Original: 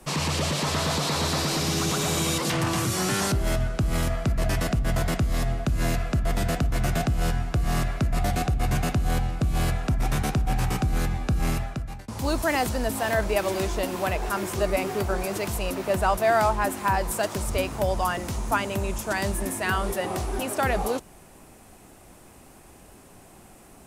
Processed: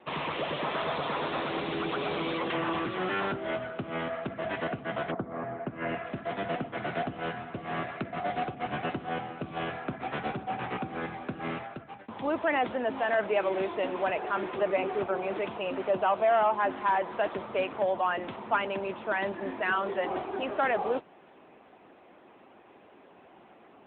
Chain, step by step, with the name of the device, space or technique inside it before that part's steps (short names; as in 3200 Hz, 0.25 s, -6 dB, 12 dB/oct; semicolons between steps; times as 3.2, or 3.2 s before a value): 5.1–6.03 LPF 1200 Hz -> 3000 Hz 24 dB/oct; 14.79–16.59 dynamic EQ 1800 Hz, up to -5 dB, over -41 dBFS, Q 2.9; telephone (BPF 300–3600 Hz; soft clip -16.5 dBFS, distortion -20 dB; AMR-NB 10.2 kbps 8000 Hz)